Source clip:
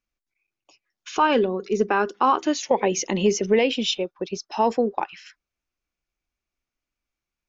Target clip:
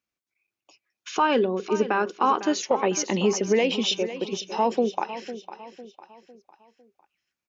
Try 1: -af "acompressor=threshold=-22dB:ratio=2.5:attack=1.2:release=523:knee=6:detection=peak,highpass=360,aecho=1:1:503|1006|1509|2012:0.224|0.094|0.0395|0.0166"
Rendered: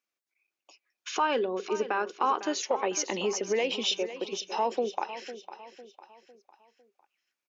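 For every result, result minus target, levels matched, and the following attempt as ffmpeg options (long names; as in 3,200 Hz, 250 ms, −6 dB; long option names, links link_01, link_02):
125 Hz band −9.0 dB; downward compressor: peak gain reduction +5 dB
-af "acompressor=threshold=-22dB:ratio=2.5:attack=1.2:release=523:knee=6:detection=peak,highpass=110,aecho=1:1:503|1006|1509|2012:0.224|0.094|0.0395|0.0166"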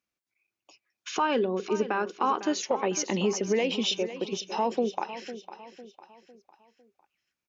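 downward compressor: peak gain reduction +5 dB
-af "acompressor=threshold=-13.5dB:ratio=2.5:attack=1.2:release=523:knee=6:detection=peak,highpass=110,aecho=1:1:503|1006|1509|2012:0.224|0.094|0.0395|0.0166"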